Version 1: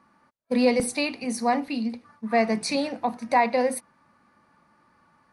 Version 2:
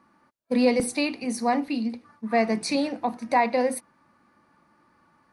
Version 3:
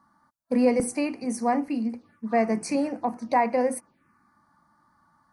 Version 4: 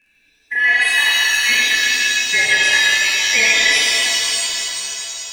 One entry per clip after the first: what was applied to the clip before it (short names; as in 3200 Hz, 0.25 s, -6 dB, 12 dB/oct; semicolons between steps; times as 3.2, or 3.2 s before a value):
bell 320 Hz +5.5 dB 0.46 oct; gain -1 dB
envelope phaser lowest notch 420 Hz, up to 3700 Hz, full sweep at -26.5 dBFS
four-band scrambler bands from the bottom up 2143; crackle 26/s -53 dBFS; shimmer reverb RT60 3.2 s, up +7 st, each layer -2 dB, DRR -6 dB; gain +1 dB